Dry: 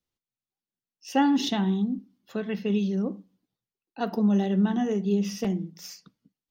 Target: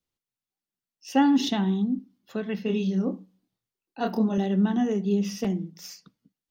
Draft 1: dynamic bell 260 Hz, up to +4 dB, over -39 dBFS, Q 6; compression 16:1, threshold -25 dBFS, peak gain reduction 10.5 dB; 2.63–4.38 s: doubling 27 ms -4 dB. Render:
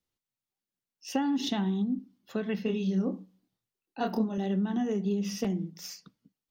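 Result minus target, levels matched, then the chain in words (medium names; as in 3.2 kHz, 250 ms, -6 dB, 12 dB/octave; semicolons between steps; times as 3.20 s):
compression: peak gain reduction +10.5 dB
dynamic bell 260 Hz, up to +4 dB, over -39 dBFS, Q 6; 2.63–4.38 s: doubling 27 ms -4 dB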